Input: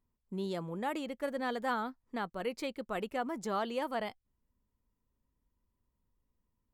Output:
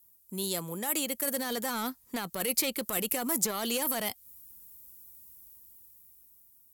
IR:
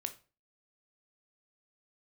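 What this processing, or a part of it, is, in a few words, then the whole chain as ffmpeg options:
FM broadcast chain: -filter_complex "[0:a]asettb=1/sr,asplit=3[link_01][link_02][link_03];[link_01]atrim=end=1.534[link_04];[link_02]atrim=start=1.53:end=2.41,asetpts=PTS-STARTPTS,afade=type=in:duration=0.004:curve=qsin,afade=type=out:start_time=0.876:duration=0.004:curve=qsin,highshelf=frequency=7600:gain=-8[link_05];[link_03]atrim=start=2.406[link_06];[link_04][link_05]acrossfade=duration=0.004:curve1=hsin:curve2=qsin[link_07];[link_07][link_06]acrossfade=duration=0.004:curve1=qsin:curve2=hsin,highpass=42,dynaudnorm=framelen=430:gausssize=7:maxgain=9dB,acrossover=split=380|3400[link_08][link_09][link_10];[link_08]acompressor=threshold=-34dB:ratio=4[link_11];[link_09]acompressor=threshold=-31dB:ratio=4[link_12];[link_10]acompressor=threshold=-51dB:ratio=4[link_13];[link_11][link_12][link_13]amix=inputs=3:normalize=0,aemphasis=mode=production:type=75fm,alimiter=level_in=1.5dB:limit=-24dB:level=0:latency=1:release=10,volume=-1.5dB,asoftclip=type=hard:threshold=-29dB,lowpass=frequency=15000:width=0.5412,lowpass=frequency=15000:width=1.3066,aemphasis=mode=production:type=75fm,volume=2dB"

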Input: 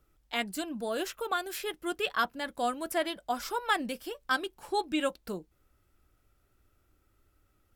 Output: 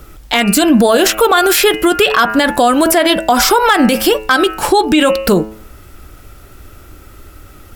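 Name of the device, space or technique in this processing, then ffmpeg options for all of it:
loud club master: -af "bandreject=frequency=108.4:width_type=h:width=4,bandreject=frequency=216.8:width_type=h:width=4,bandreject=frequency=325.2:width_type=h:width=4,bandreject=frequency=433.6:width_type=h:width=4,bandreject=frequency=542:width_type=h:width=4,bandreject=frequency=650.4:width_type=h:width=4,bandreject=frequency=758.8:width_type=h:width=4,bandreject=frequency=867.2:width_type=h:width=4,bandreject=frequency=975.6:width_type=h:width=4,bandreject=frequency=1084:width_type=h:width=4,bandreject=frequency=1192.4:width_type=h:width=4,bandreject=frequency=1300.8:width_type=h:width=4,bandreject=frequency=1409.2:width_type=h:width=4,bandreject=frequency=1517.6:width_type=h:width=4,bandreject=frequency=1626:width_type=h:width=4,bandreject=frequency=1734.4:width_type=h:width=4,bandreject=frequency=1842.8:width_type=h:width=4,bandreject=frequency=1951.2:width_type=h:width=4,bandreject=frequency=2059.6:width_type=h:width=4,bandreject=frequency=2168:width_type=h:width=4,bandreject=frequency=2276.4:width_type=h:width=4,bandreject=frequency=2384.8:width_type=h:width=4,bandreject=frequency=2493.2:width_type=h:width=4,bandreject=frequency=2601.6:width_type=h:width=4,bandreject=frequency=2710:width_type=h:width=4,bandreject=frequency=2818.4:width_type=h:width=4,bandreject=frequency=2926.8:width_type=h:width=4,acompressor=threshold=-32dB:ratio=2.5,asoftclip=type=hard:threshold=-24dB,alimiter=level_in=33dB:limit=-1dB:release=50:level=0:latency=1,volume=-1dB"

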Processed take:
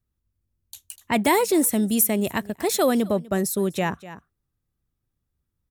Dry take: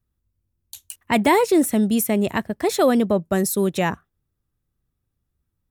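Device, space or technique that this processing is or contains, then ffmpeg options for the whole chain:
ducked delay: -filter_complex "[0:a]asettb=1/sr,asplit=3[link_01][link_02][link_03];[link_01]atrim=end=1.204[link_04];[link_02]atrim=start=1.2:end=3.25,asetpts=PTS-STARTPTS,afade=type=in:duration=0.004:curve=qsin,afade=type=out:start_time=2.046:duration=0.004:curve=qsin,aemphasis=mode=production:type=cd[link_05];[link_03]atrim=start=3.246[link_06];[link_04][link_05]acrossfade=duration=0.004:curve1=hsin:curve2=qsin[link_07];[link_07][link_06]acrossfade=duration=0.004:curve1=qsin:curve2=hsin,asplit=3[link_08][link_09][link_10];[link_09]adelay=247,volume=-9dB[link_11];[link_10]apad=whole_len=262684[link_12];[link_11][link_12]sidechaincompress=threshold=-39dB:ratio=3:attack=41:release=255[link_13];[link_08][link_13]amix=inputs=2:normalize=0,volume=-3dB"

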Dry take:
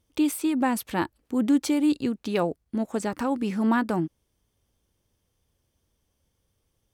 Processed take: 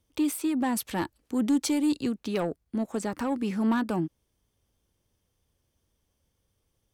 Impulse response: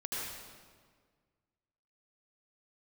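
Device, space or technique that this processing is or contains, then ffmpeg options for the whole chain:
one-band saturation: -filter_complex "[0:a]asettb=1/sr,asplit=3[link_01][link_02][link_03];[link_01]atrim=end=0.774[link_04];[link_02]atrim=start=0.77:end=2.15,asetpts=PTS-STARTPTS,afade=type=in:duration=0.004:curve=qsin,afade=type=out:start_time=1.376:duration=0.004:curve=qsin,equalizer=frequency=6800:width_type=o:width=2.3:gain=4.5[link_05];[link_03]atrim=start=2.146[link_06];[link_04][link_05]acrossfade=duration=0.004:curve1=hsin:curve2=qsin[link_07];[link_07][link_06]acrossfade=duration=0.004:curve1=qsin:curve2=hsin,acrossover=split=250|4000[link_08][link_09][link_10];[link_09]asoftclip=type=tanh:threshold=-21.5dB[link_11];[link_08][link_11][link_10]amix=inputs=3:normalize=0,volume=-1.5dB"

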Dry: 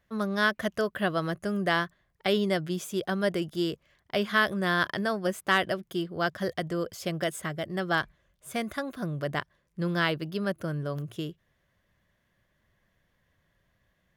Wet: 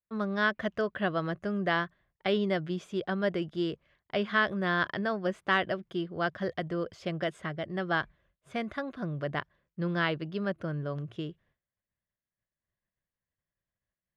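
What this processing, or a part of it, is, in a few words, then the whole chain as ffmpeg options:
hearing-loss simulation: -af "lowpass=3400,agate=range=-33dB:threshold=-58dB:ratio=3:detection=peak,volume=-2dB"

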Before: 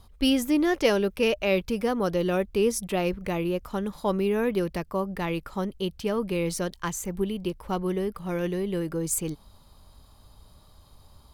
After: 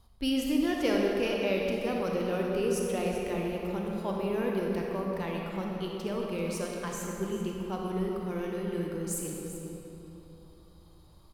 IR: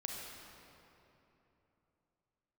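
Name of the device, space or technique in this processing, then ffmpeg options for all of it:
cave: -filter_complex "[0:a]aecho=1:1:388:0.237[link_01];[1:a]atrim=start_sample=2205[link_02];[link_01][link_02]afir=irnorm=-1:irlink=0,volume=-5dB"

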